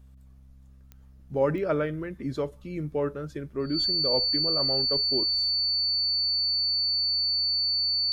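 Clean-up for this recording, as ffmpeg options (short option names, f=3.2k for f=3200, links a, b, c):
-af "adeclick=t=4,bandreject=f=65.9:t=h:w=4,bandreject=f=131.8:t=h:w=4,bandreject=f=197.7:t=h:w=4,bandreject=f=263.6:t=h:w=4,bandreject=f=4.5k:w=30"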